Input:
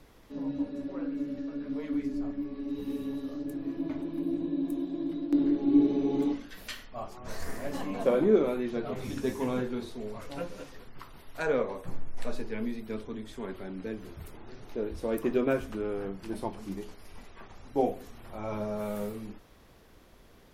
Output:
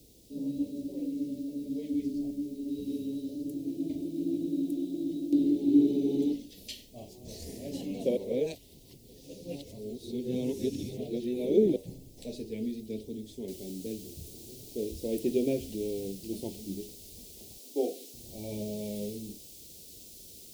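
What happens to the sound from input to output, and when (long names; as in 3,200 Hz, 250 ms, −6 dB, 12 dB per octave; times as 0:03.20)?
0:08.17–0:11.76: reverse
0:13.48: noise floor change −61 dB −49 dB
0:17.57–0:18.14: high-pass filter 290 Hz 24 dB per octave
whole clip: high-pass filter 44 Hz; dynamic equaliser 2,300 Hz, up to +6 dB, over −50 dBFS, Q 0.89; Chebyshev band-stop filter 420–4,100 Hz, order 2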